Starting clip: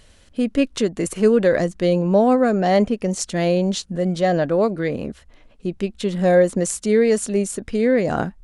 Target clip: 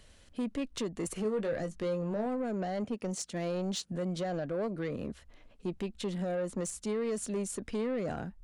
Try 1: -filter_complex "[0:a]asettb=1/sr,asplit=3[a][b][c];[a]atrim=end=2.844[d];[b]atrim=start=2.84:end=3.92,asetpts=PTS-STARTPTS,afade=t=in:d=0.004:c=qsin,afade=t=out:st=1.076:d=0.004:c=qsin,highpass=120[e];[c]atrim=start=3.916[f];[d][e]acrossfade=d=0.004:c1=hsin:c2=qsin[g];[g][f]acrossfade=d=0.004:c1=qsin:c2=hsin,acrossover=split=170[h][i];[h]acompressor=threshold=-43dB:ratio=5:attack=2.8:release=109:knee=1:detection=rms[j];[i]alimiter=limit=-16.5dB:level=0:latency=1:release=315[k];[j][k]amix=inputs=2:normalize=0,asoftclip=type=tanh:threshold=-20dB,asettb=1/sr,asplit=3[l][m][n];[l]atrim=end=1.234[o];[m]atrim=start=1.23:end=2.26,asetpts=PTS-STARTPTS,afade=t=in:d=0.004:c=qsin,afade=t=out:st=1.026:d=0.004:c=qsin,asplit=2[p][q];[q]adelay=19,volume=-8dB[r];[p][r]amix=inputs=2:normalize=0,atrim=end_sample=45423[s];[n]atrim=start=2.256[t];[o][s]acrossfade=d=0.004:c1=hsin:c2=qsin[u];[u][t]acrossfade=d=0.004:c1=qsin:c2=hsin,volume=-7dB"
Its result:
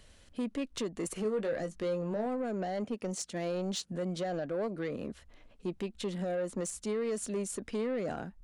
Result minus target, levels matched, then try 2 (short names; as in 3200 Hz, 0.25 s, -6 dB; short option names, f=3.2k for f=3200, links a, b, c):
compressor: peak gain reduction +7 dB
-filter_complex "[0:a]asettb=1/sr,asplit=3[a][b][c];[a]atrim=end=2.844[d];[b]atrim=start=2.84:end=3.92,asetpts=PTS-STARTPTS,afade=t=in:d=0.004:c=qsin,afade=t=out:st=1.076:d=0.004:c=qsin,highpass=120[e];[c]atrim=start=3.916[f];[d][e]acrossfade=d=0.004:c1=hsin:c2=qsin[g];[g][f]acrossfade=d=0.004:c1=qsin:c2=hsin,acrossover=split=170[h][i];[h]acompressor=threshold=-34dB:ratio=5:attack=2.8:release=109:knee=1:detection=rms[j];[i]alimiter=limit=-16.5dB:level=0:latency=1:release=315[k];[j][k]amix=inputs=2:normalize=0,asoftclip=type=tanh:threshold=-20dB,asettb=1/sr,asplit=3[l][m][n];[l]atrim=end=1.234[o];[m]atrim=start=1.23:end=2.26,asetpts=PTS-STARTPTS,afade=t=in:d=0.004:c=qsin,afade=t=out:st=1.026:d=0.004:c=qsin,asplit=2[p][q];[q]adelay=19,volume=-8dB[r];[p][r]amix=inputs=2:normalize=0,atrim=end_sample=45423[s];[n]atrim=start=2.256[t];[o][s]acrossfade=d=0.004:c1=hsin:c2=qsin[u];[u][t]acrossfade=d=0.004:c1=qsin:c2=hsin,volume=-7dB"